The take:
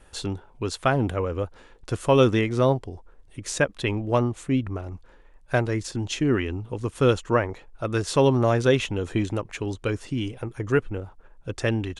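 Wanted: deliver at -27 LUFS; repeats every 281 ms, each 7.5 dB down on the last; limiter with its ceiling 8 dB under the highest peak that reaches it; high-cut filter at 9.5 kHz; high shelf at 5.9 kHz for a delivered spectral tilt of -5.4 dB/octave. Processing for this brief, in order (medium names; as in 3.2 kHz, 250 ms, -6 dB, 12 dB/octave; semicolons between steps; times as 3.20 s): low-pass 9.5 kHz; treble shelf 5.9 kHz +7.5 dB; peak limiter -14 dBFS; feedback delay 281 ms, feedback 42%, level -7.5 dB; trim -0.5 dB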